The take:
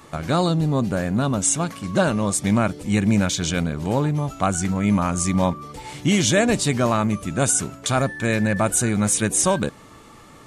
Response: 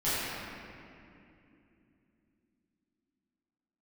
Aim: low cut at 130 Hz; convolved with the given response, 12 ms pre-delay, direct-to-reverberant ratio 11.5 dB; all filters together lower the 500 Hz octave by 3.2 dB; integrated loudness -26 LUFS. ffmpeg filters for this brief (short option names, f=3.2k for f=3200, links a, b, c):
-filter_complex "[0:a]highpass=130,equalizer=f=500:t=o:g=-4,asplit=2[a][b];[1:a]atrim=start_sample=2205,adelay=12[c];[b][c]afir=irnorm=-1:irlink=0,volume=-23dB[d];[a][d]amix=inputs=2:normalize=0,volume=-4dB"